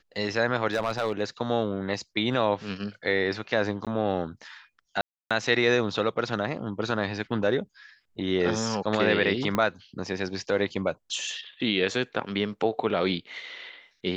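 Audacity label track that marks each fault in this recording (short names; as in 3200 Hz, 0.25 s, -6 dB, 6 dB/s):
0.720000	1.210000	clipped -20.5 dBFS
3.850000	3.870000	gap 17 ms
5.010000	5.310000	gap 0.296 s
9.550000	9.550000	pop -12 dBFS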